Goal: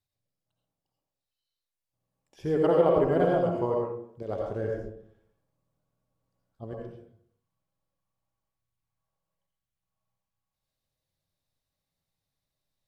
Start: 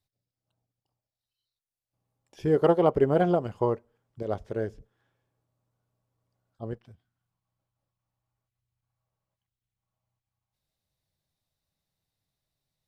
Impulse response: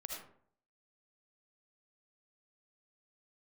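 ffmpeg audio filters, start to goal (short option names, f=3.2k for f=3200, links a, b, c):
-filter_complex "[0:a]asettb=1/sr,asplit=3[a][b][c];[a]atrim=end=4.464[d];[b]atrim=start=4.46:end=6.64,asetpts=PTS-STARTPTS,afade=t=in:d=0.004:c=qsin,afade=t=out:st=2.176:d=0.004:c=qsin,lowshelf=f=180:g=5[e];[c]atrim=start=6.636[f];[d][e]acrossfade=d=0.004:c1=hsin:c2=qsin[g];[g][f]acrossfade=d=0.004:c1=qsin:c2=hsin[h];[1:a]atrim=start_sample=2205,asetrate=37926,aresample=44100[i];[h][i]afir=irnorm=-1:irlink=0"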